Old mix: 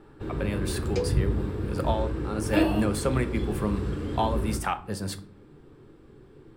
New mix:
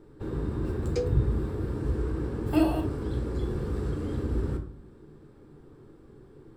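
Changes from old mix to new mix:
speech: muted; master: add bell 2700 Hz -6.5 dB 1.2 oct

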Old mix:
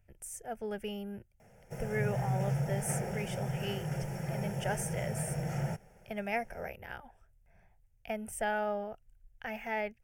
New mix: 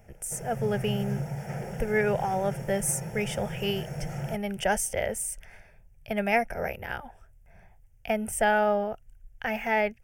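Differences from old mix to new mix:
speech +9.5 dB; background: entry -1.40 s

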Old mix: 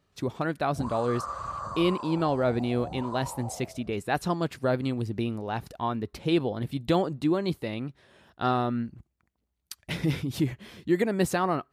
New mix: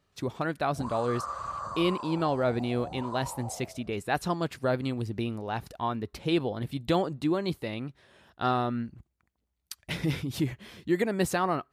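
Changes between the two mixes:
speech: add low shelf 120 Hz +5.5 dB; master: add low shelf 380 Hz -5 dB

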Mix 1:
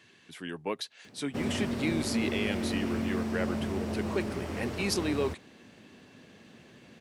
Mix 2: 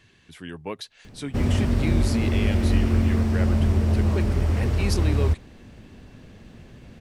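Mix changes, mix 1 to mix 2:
background +4.5 dB; master: remove HPF 200 Hz 12 dB/oct

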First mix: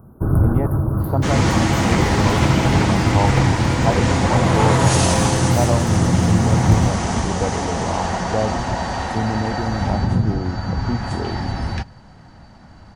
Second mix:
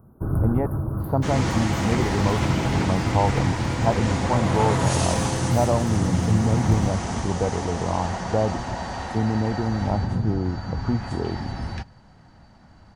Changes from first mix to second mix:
speech: add air absorption 250 m; first sound -7.0 dB; second sound -7.0 dB

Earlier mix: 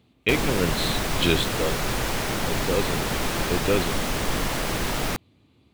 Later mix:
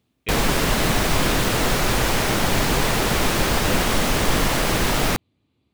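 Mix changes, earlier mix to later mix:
speech -9.5 dB; background +6.0 dB

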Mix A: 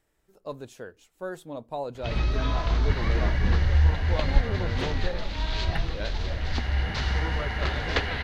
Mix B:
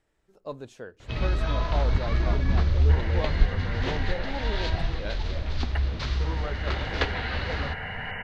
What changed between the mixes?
first sound: entry -0.95 s; master: add air absorption 51 m

